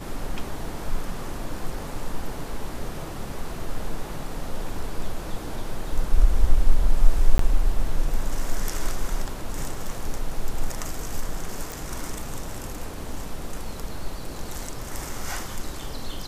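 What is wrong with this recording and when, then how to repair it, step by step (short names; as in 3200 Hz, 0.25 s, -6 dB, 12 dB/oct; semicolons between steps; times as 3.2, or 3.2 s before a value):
7.38–7.39 gap 13 ms
11.72 pop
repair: de-click; interpolate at 7.38, 13 ms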